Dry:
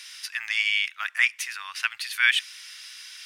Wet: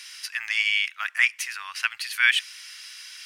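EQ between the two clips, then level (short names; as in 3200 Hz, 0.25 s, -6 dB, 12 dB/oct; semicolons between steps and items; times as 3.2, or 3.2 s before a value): notch 3600 Hz, Q 15; +1.0 dB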